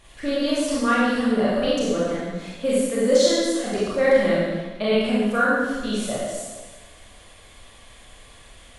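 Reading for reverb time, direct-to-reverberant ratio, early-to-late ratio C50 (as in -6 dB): 1.4 s, -8.0 dB, -3.0 dB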